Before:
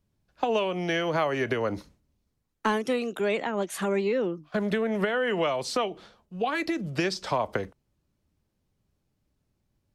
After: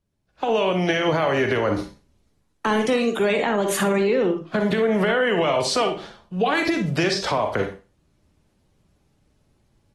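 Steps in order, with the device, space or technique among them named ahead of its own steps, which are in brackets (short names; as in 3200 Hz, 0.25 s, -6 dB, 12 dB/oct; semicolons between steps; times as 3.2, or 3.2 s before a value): 2.68–3.27 LPF 11000 Hz 24 dB/oct; Schroeder reverb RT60 0.31 s, DRR 7 dB; low-bitrate web radio (AGC gain up to 13.5 dB; limiter -9.5 dBFS, peak gain reduction 7.5 dB; gain -3 dB; AAC 32 kbps 48000 Hz)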